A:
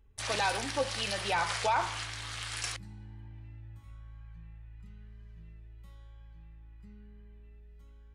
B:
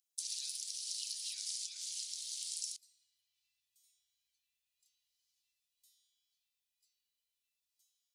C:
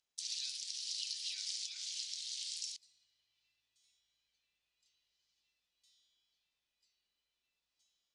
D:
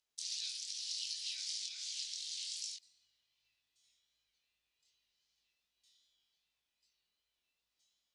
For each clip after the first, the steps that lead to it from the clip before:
inverse Chebyshev high-pass filter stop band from 1,100 Hz, stop band 70 dB; downward compressor 6 to 1, threshold −44 dBFS, peak gain reduction 10 dB; level +6.5 dB
high-frequency loss of the air 130 metres; level +7.5 dB
chorus effect 2.6 Hz, delay 18.5 ms, depth 6.3 ms; level +3 dB

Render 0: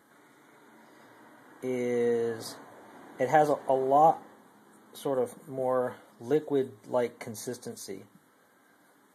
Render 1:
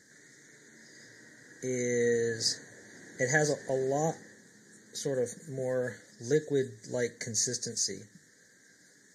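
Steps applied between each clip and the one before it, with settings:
drawn EQ curve 170 Hz 0 dB, 270 Hz −8 dB, 470 Hz −5 dB, 810 Hz −20 dB, 1,200 Hz −23 dB, 1,800 Hz +7 dB, 2,700 Hz −18 dB, 4,900 Hz +11 dB, 6,900 Hz +12 dB, 11,000 Hz −11 dB
level +4.5 dB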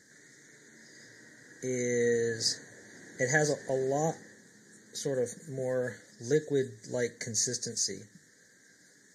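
no processing that can be heard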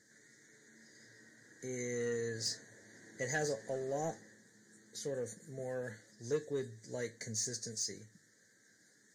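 soft clipping −19 dBFS, distortion −21 dB
tuned comb filter 110 Hz, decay 0.15 s, harmonics all, mix 70%
level −2 dB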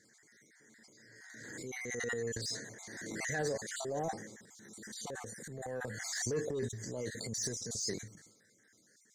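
time-frequency cells dropped at random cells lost 37%
transient designer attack −6 dB, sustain +10 dB
background raised ahead of every attack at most 29 dB per second
level +1 dB

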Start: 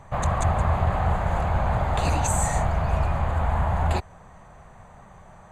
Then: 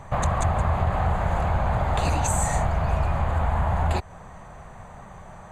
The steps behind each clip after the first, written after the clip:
downward compressor 2 to 1, threshold −28 dBFS, peak gain reduction 6.5 dB
level +5 dB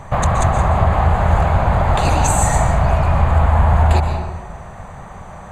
convolution reverb RT60 1.4 s, pre-delay 116 ms, DRR 5 dB
level +7 dB

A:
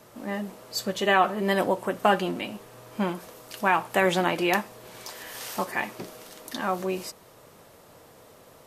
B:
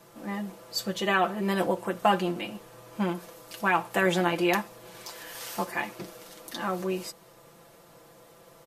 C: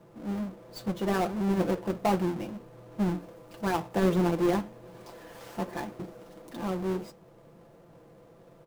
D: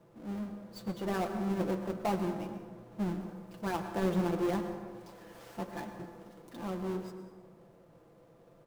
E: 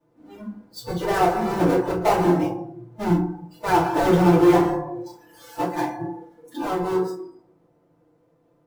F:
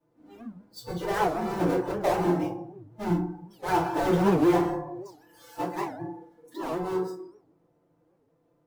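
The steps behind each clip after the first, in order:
comb filter 5.9 ms, depth 69%; level −3.5 dB
each half-wave held at its own peak; tilt shelving filter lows +7.5 dB, about 1,100 Hz; flanger 1.4 Hz, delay 5.2 ms, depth 7.2 ms, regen −80%; level −5.5 dB
dense smooth reverb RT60 1.6 s, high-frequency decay 0.5×, pre-delay 90 ms, DRR 7.5 dB; level −6 dB
mains-hum notches 50/100/150/200 Hz; noise reduction from a noise print of the clip's start 20 dB; feedback delay network reverb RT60 0.44 s, low-frequency decay 1.2×, high-frequency decay 0.55×, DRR −8 dB; level +6.5 dB
wow of a warped record 78 rpm, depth 250 cents; level −6 dB

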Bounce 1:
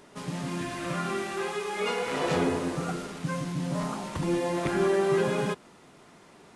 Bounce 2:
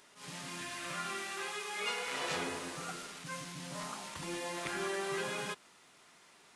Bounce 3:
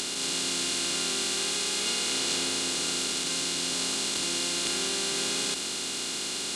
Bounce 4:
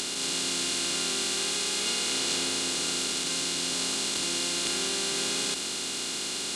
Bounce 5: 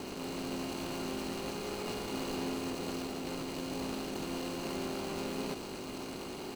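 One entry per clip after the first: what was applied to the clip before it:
tilt shelving filter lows −8.5 dB, about 870 Hz; level that may rise only so fast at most 130 dB per second; level −9 dB
compressor on every frequency bin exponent 0.2; octave-band graphic EQ 125/250/500/1,000/2,000/4,000/8,000 Hz −9/+6/−6/−6/−8/+9/+11 dB
no processing that can be heard
running median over 25 samples; double-tracking delay 19 ms −11 dB

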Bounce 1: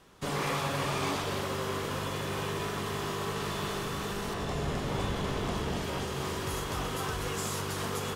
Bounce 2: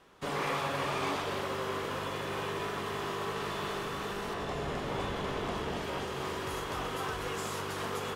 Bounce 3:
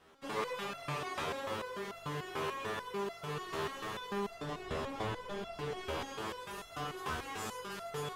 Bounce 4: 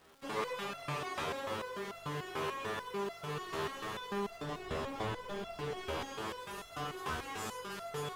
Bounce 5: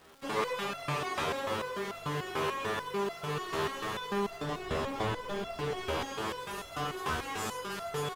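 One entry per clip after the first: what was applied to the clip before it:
bass and treble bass −7 dB, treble −7 dB
step-sequenced resonator 6.8 Hz 80–680 Hz; level +7 dB
surface crackle 580 per second −54 dBFS
single-tap delay 741 ms −23.5 dB; level +5 dB

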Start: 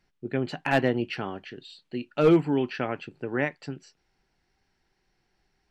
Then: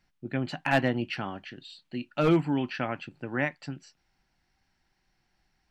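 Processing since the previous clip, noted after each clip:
parametric band 420 Hz −11 dB 0.43 octaves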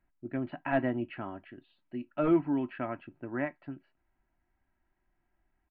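Gaussian smoothing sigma 4 samples
comb filter 3.1 ms, depth 49%
level −4 dB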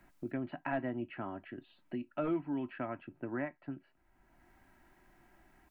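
multiband upward and downward compressor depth 70%
level −4.5 dB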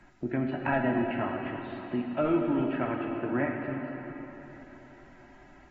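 dense smooth reverb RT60 3.7 s, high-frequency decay 0.95×, DRR 1 dB
level +6.5 dB
AAC 24 kbit/s 48,000 Hz

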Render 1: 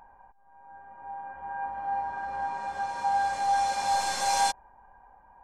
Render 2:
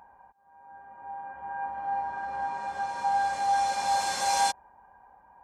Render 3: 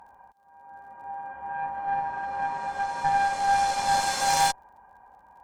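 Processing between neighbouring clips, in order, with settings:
high-pass filter 70 Hz
surface crackle 37 per second −58 dBFS; harmonic generator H 6 −15 dB, 8 −22 dB, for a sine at −14 dBFS; level +2.5 dB

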